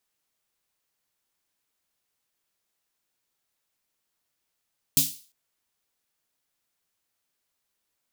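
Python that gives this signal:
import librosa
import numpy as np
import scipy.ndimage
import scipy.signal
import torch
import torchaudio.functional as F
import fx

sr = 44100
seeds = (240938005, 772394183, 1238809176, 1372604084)

y = fx.drum_snare(sr, seeds[0], length_s=0.35, hz=150.0, second_hz=270.0, noise_db=10.0, noise_from_hz=3300.0, decay_s=0.26, noise_decay_s=0.39)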